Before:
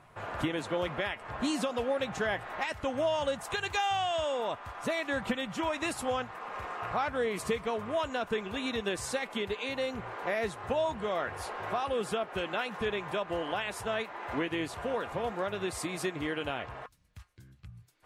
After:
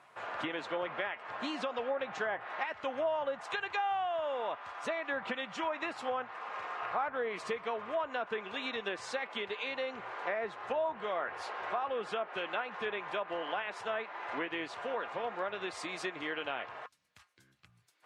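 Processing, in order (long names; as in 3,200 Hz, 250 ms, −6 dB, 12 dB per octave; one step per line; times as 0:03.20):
meter weighting curve A
treble cut that deepens with the level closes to 1,500 Hz, closed at −28 dBFS
level −1 dB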